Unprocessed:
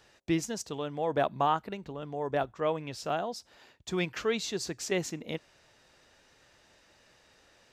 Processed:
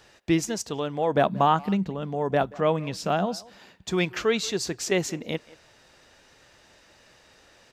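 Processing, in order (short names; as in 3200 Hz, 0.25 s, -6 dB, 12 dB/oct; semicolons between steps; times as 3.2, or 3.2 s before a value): 1.15–3.89 bell 190 Hz +14.5 dB 0.4 oct; speakerphone echo 0.18 s, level -20 dB; gain +6 dB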